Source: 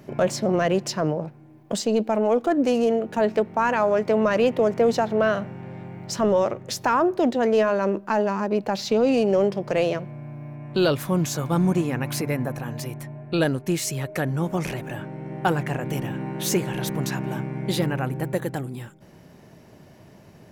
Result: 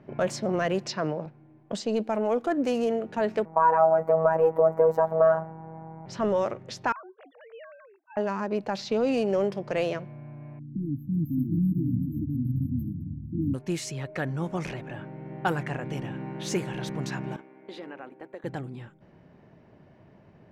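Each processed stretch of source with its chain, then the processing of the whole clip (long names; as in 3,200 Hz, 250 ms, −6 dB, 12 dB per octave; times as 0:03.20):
0:00.86–0:01.26: band-pass filter 120–4,000 Hz + high-shelf EQ 2,700 Hz +10 dB + notch filter 3,100 Hz, Q 15
0:03.45–0:06.06: drawn EQ curve 290 Hz 0 dB, 900 Hz +12 dB, 3,700 Hz −26 dB, 9,400 Hz −9 dB, 14,000 Hz +5 dB + phases set to zero 161 Hz
0:06.92–0:08.17: three sine waves on the formant tracks + first difference
0:10.59–0:13.54: parametric band 380 Hz +4 dB 2 octaves + delay with pitch and tempo change per echo 471 ms, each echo −6 semitones, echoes 2, each echo −6 dB + linear-phase brick-wall band-stop 330–12,000 Hz
0:17.36–0:18.44: high-pass filter 270 Hz 24 dB per octave + noise gate −34 dBFS, range −10 dB + downward compressor 2.5 to 1, threshold −34 dBFS
whole clip: low-pass that shuts in the quiet parts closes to 2,200 Hz, open at −17 dBFS; dynamic equaliser 1,600 Hz, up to +3 dB, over −34 dBFS, Q 1.1; level −5.5 dB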